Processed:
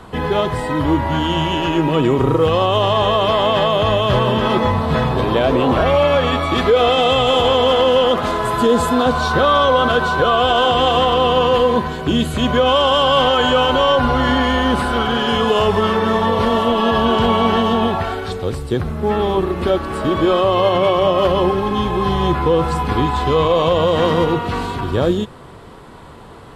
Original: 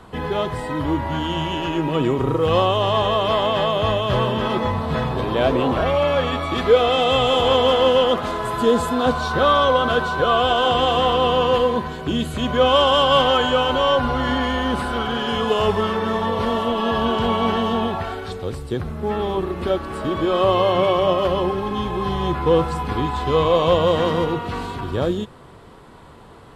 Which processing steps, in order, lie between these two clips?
brickwall limiter −11 dBFS, peak gain reduction 7 dB
level +5.5 dB

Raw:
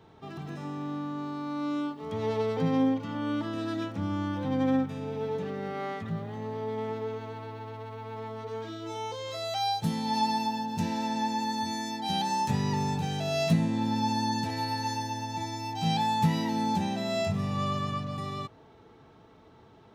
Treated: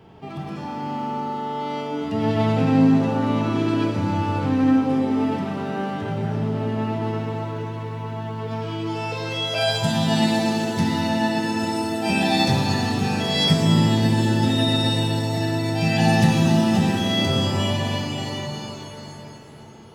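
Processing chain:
formants moved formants −3 semitones
reverb with rising layers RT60 3.1 s, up +7 semitones, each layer −8 dB, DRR 1 dB
level +6.5 dB

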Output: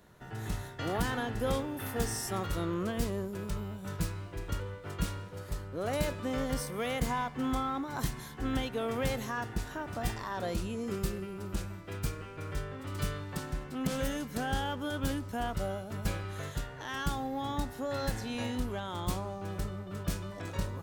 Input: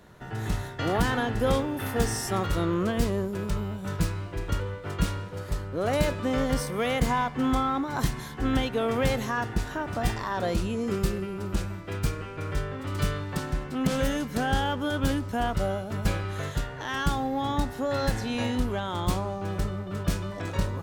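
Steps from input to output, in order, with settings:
high-shelf EQ 7,700 Hz +6.5 dB
level −7 dB

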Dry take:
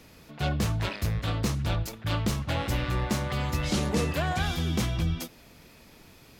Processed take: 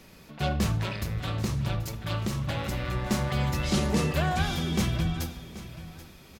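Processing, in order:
0:00.78–0:03.06: downward compressor, threshold −27 dBFS, peak gain reduction 5.5 dB
repeating echo 782 ms, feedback 25%, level −15.5 dB
rectangular room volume 3,000 cubic metres, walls furnished, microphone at 1.1 metres

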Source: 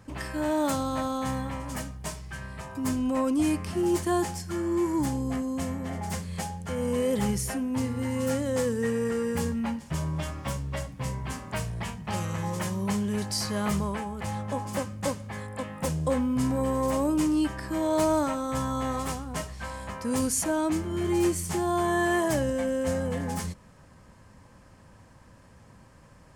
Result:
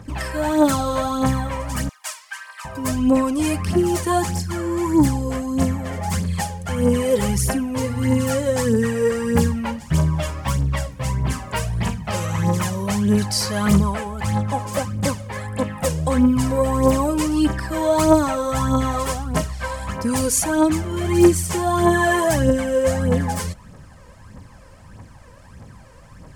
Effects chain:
phase shifter 1.6 Hz, delay 2.2 ms, feedback 58%
0:01.89–0:02.65: high-pass filter 990 Hz 24 dB per octave
level +6.5 dB

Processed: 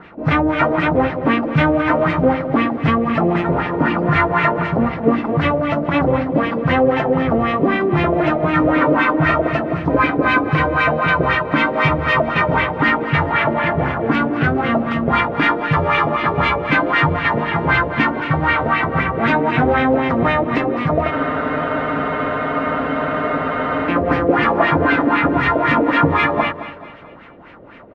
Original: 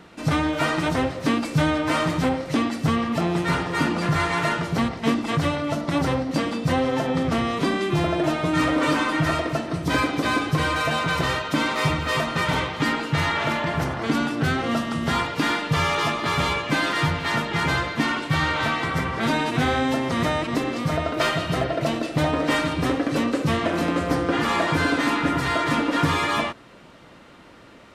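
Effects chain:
auto-filter low-pass sine 3.9 Hz 490–2,500 Hz
on a send: repeating echo 216 ms, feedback 44%, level −13.5 dB
on the sum: frozen spectrum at 0:21.12, 2.77 s
level +4.5 dB

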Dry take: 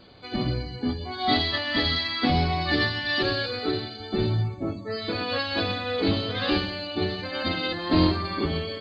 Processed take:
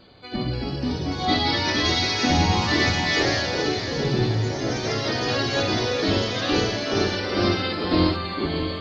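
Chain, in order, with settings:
feedback delay with all-pass diffusion 609 ms, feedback 54%, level −8.5 dB
delay with pitch and tempo change per echo 316 ms, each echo +2 semitones, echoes 3

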